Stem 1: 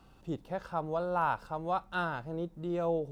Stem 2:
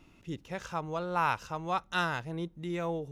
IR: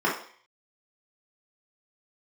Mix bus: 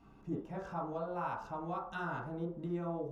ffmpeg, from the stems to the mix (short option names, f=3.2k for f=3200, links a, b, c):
-filter_complex "[0:a]lowpass=f=1.6k:p=1,acompressor=threshold=-35dB:ratio=6,volume=-5dB,asplit=3[a][b][c];[b]volume=-9.5dB[d];[1:a]volume=-12.5dB[e];[c]apad=whole_len=137430[f];[e][f]sidechaincompress=threshold=-47dB:ratio=8:attack=12:release=342[g];[2:a]atrim=start_sample=2205[h];[d][h]afir=irnorm=-1:irlink=0[i];[a][g][i]amix=inputs=3:normalize=0"